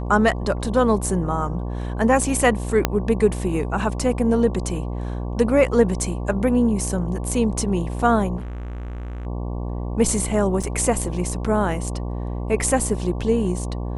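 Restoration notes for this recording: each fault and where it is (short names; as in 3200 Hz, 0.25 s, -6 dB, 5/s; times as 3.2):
buzz 60 Hz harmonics 19 -27 dBFS
2.85 pop -2 dBFS
8.36–9.27 clipped -28.5 dBFS
10.63–10.64 gap 5.1 ms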